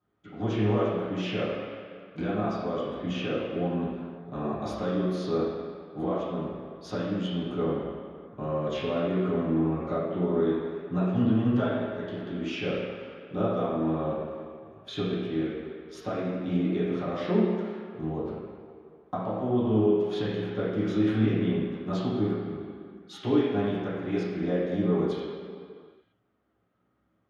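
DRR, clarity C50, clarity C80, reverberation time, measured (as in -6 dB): -12.5 dB, -1.0 dB, 1.0 dB, not exponential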